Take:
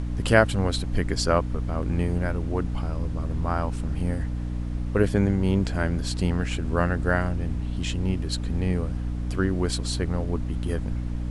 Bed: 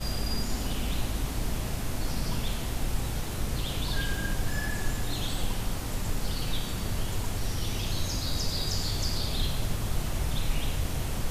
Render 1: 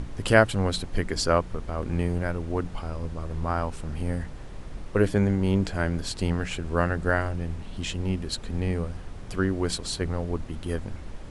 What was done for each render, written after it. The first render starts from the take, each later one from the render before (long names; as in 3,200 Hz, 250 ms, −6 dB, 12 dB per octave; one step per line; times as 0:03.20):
mains-hum notches 60/120/180/240/300 Hz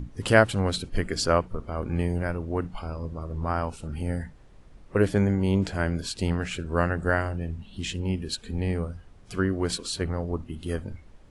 noise reduction from a noise print 13 dB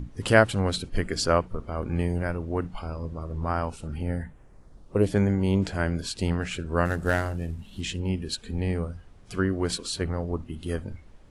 0:03.96–0:05.10: parametric band 8,800 Hz → 1,400 Hz −14.5 dB
0:06.85–0:07.81: variable-slope delta modulation 64 kbit/s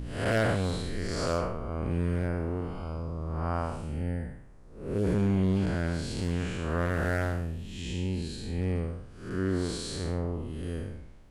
spectrum smeared in time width 248 ms
hard clipping −19.5 dBFS, distortion −17 dB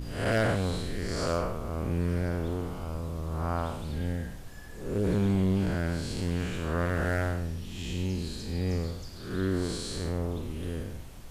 mix in bed −16 dB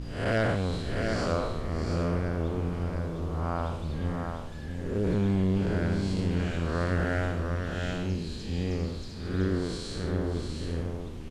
high-frequency loss of the air 58 metres
on a send: single-tap delay 701 ms −5 dB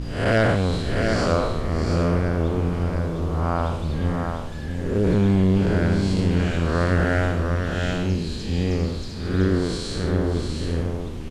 level +7.5 dB